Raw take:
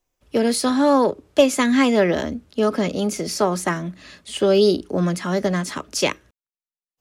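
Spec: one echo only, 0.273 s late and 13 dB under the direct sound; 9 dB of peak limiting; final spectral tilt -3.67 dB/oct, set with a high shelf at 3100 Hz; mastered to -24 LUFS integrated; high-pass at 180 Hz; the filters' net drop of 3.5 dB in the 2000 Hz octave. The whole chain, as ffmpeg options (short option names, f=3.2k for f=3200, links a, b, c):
-af "highpass=180,equalizer=f=2k:t=o:g=-7,highshelf=f=3.1k:g=7.5,alimiter=limit=-11.5dB:level=0:latency=1,aecho=1:1:273:0.224,volume=-2dB"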